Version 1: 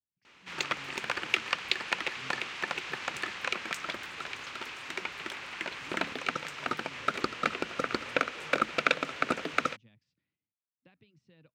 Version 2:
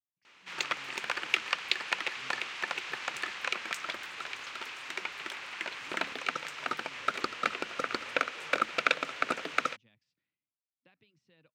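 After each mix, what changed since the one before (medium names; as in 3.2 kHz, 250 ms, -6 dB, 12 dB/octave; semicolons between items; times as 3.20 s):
master: add bass shelf 320 Hz -10.5 dB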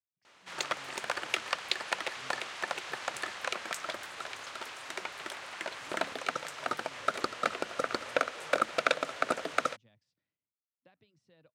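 master: add fifteen-band graphic EQ 100 Hz +5 dB, 630 Hz +7 dB, 2.5 kHz -6 dB, 10 kHz +8 dB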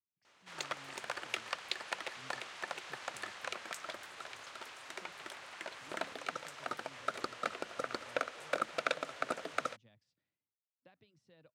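background -6.5 dB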